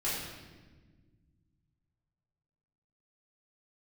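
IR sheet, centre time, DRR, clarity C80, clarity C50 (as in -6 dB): 80 ms, -10.0 dB, 2.5 dB, 0.0 dB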